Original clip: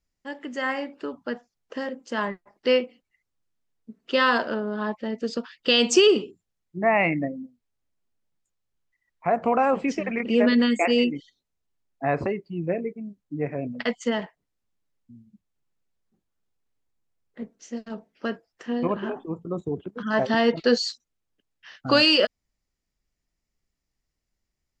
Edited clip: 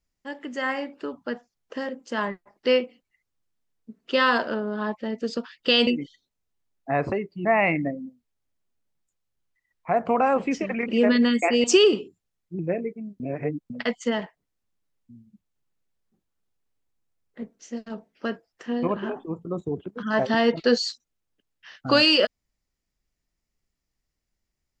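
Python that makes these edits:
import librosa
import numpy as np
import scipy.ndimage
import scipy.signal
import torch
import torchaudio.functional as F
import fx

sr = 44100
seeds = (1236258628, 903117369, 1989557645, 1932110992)

y = fx.edit(x, sr, fx.swap(start_s=5.87, length_s=0.95, other_s=11.01, other_length_s=1.58),
    fx.reverse_span(start_s=13.2, length_s=0.5), tone=tone)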